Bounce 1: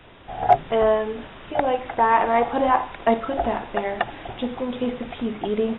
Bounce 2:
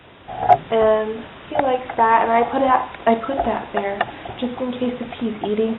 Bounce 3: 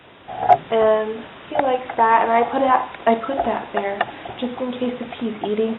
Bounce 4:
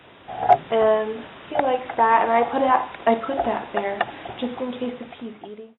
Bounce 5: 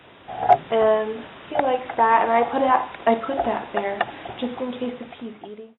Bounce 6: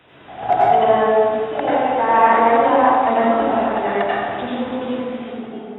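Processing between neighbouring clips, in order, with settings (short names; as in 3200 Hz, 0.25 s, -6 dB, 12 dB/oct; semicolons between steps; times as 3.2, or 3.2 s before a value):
HPF 63 Hz; gain +3 dB
low shelf 97 Hz -10 dB
ending faded out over 1.26 s; gain -2 dB
nothing audible
plate-style reverb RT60 1.8 s, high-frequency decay 0.45×, pre-delay 75 ms, DRR -8 dB; gain -3.5 dB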